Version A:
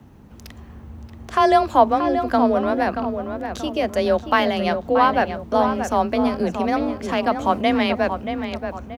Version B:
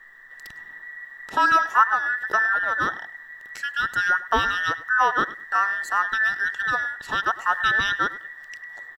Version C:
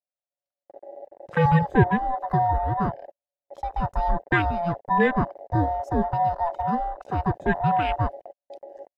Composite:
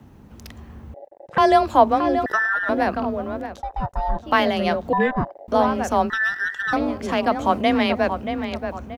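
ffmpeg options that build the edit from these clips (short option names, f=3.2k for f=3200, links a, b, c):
-filter_complex "[2:a]asplit=3[a][b][c];[1:a]asplit=2[d][e];[0:a]asplit=6[f][g][h][i][j][k];[f]atrim=end=0.942[l];[a]atrim=start=0.938:end=1.382[m];[g]atrim=start=1.378:end=2.262[n];[d]atrim=start=2.258:end=2.692[o];[h]atrim=start=2.688:end=3.63[p];[b]atrim=start=3.39:end=4.36[q];[i]atrim=start=4.12:end=4.932[r];[c]atrim=start=4.928:end=5.482[s];[j]atrim=start=5.478:end=6.102[t];[e]atrim=start=6.098:end=6.732[u];[k]atrim=start=6.728[v];[l][m]acrossfade=d=0.004:c1=hsin:c2=hsin[w];[w][n]acrossfade=d=0.004:c1=hsin:c2=hsin[x];[x][o]acrossfade=d=0.004:c1=hsin:c2=hsin[y];[y][p]acrossfade=d=0.004:c1=hsin:c2=hsin[z];[z][q]acrossfade=d=0.24:c1=tri:c2=tri[aa];[aa][r]acrossfade=d=0.24:c1=tri:c2=tri[ab];[ab][s]acrossfade=d=0.004:c1=hsin:c2=hsin[ac];[ac][t]acrossfade=d=0.004:c1=hsin:c2=hsin[ad];[ad][u]acrossfade=d=0.004:c1=hsin:c2=hsin[ae];[ae][v]acrossfade=d=0.004:c1=hsin:c2=hsin"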